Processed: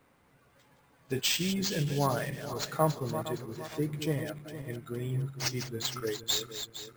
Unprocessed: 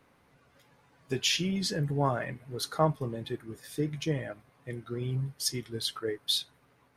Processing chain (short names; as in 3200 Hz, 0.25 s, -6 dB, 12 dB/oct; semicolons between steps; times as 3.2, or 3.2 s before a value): regenerating reverse delay 0.231 s, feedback 63%, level -9.5 dB; careless resampling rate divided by 4×, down none, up hold; gain -1 dB